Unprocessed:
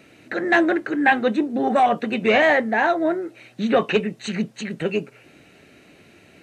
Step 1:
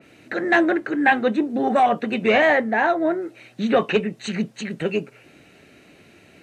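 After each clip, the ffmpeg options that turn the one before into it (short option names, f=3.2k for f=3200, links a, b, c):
-af "adynamicequalizer=threshold=0.0224:dfrequency=2900:dqfactor=0.7:tfrequency=2900:tqfactor=0.7:attack=5:release=100:ratio=0.375:range=3:mode=cutabove:tftype=highshelf"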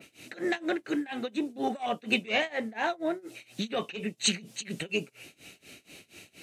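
-af "acompressor=threshold=-22dB:ratio=6,tremolo=f=4.2:d=0.94,aexciter=amount=3.7:drive=4.7:freq=2.4k,volume=-2dB"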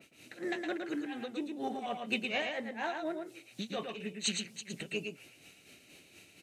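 -af "aecho=1:1:113:0.562,volume=-7dB"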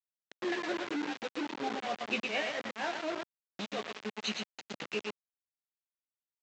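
-filter_complex "[0:a]asplit=2[a][b];[b]adelay=14,volume=-7.5dB[c];[a][c]amix=inputs=2:normalize=0,aresample=16000,acrusher=bits=5:mix=0:aa=0.000001,aresample=44100,highpass=210,lowpass=3.8k"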